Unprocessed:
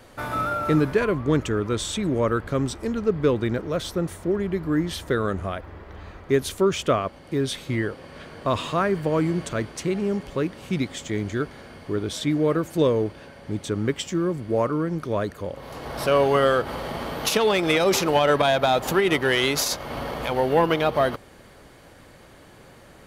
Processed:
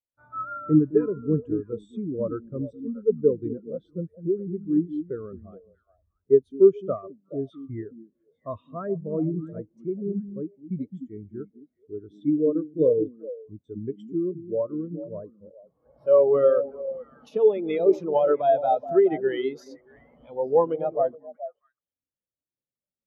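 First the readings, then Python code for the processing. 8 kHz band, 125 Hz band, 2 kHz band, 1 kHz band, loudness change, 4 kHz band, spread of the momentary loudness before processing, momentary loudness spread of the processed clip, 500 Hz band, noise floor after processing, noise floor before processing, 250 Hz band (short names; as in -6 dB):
under -30 dB, -7.0 dB, under -15 dB, -6.5 dB, -1.0 dB, under -20 dB, 11 LU, 18 LU, +0.5 dB, under -85 dBFS, -49 dBFS, -2.0 dB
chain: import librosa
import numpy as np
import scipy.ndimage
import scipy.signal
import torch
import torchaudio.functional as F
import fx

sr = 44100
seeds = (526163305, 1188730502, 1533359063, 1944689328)

y = fx.echo_stepped(x, sr, ms=212, hz=230.0, octaves=1.4, feedback_pct=70, wet_db=-2.0)
y = fx.spectral_expand(y, sr, expansion=2.5)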